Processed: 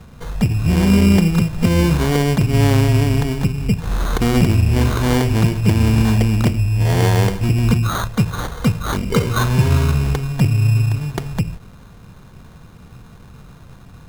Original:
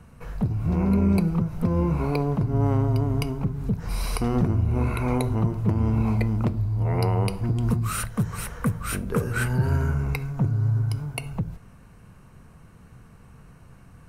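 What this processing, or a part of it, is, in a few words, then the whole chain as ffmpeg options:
crushed at another speed: -af "asetrate=22050,aresample=44100,acrusher=samples=34:mix=1:aa=0.000001,asetrate=88200,aresample=44100,volume=8dB"

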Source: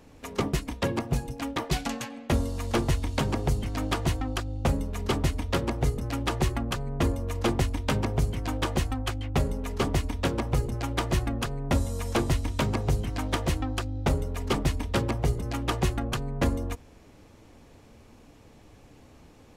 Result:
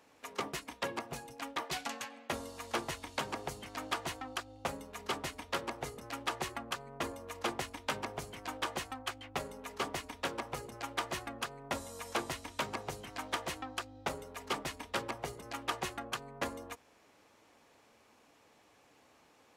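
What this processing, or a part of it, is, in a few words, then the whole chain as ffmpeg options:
filter by subtraction: -filter_complex "[0:a]asplit=2[link_01][link_02];[link_02]lowpass=1100,volume=-1[link_03];[link_01][link_03]amix=inputs=2:normalize=0,volume=-6dB"

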